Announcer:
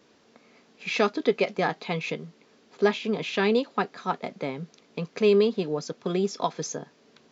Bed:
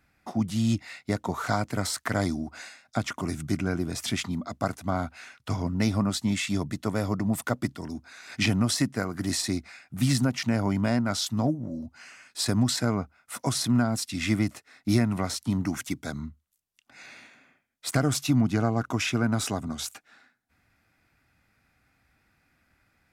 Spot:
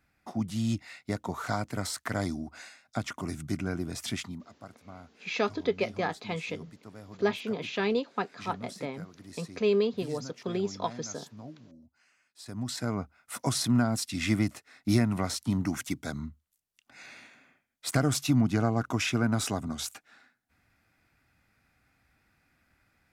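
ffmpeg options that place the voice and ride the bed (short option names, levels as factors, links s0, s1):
-filter_complex "[0:a]adelay=4400,volume=0.562[s0];[1:a]volume=4.73,afade=t=out:st=4.12:d=0.41:silence=0.177828,afade=t=in:st=12.45:d=0.76:silence=0.125893[s1];[s0][s1]amix=inputs=2:normalize=0"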